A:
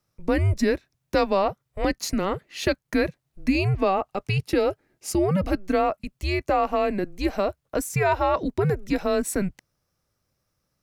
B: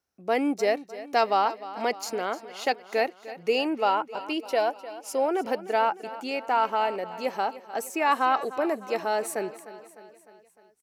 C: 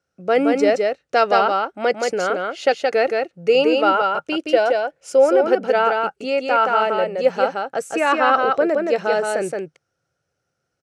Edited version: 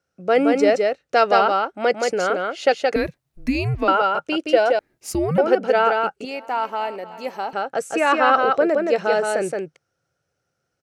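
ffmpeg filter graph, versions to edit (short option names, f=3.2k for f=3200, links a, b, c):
-filter_complex "[0:a]asplit=2[a][b];[2:a]asplit=4[c][d][e][f];[c]atrim=end=2.962[g];[a]atrim=start=2.958:end=3.882[h];[d]atrim=start=3.878:end=4.792[i];[b]atrim=start=4.788:end=5.382[j];[e]atrim=start=5.378:end=6.252[k];[1:a]atrim=start=6.248:end=7.532[l];[f]atrim=start=7.528[m];[g][h]acrossfade=d=0.004:c1=hsin:c2=hsin[n];[n][i]acrossfade=d=0.004:c1=hsin:c2=hsin[o];[o][j]acrossfade=d=0.004:c1=hsin:c2=hsin[p];[p][k]acrossfade=d=0.004:c1=hsin:c2=hsin[q];[q][l]acrossfade=d=0.004:c1=hsin:c2=hsin[r];[r][m]acrossfade=d=0.004:c1=hsin:c2=hsin"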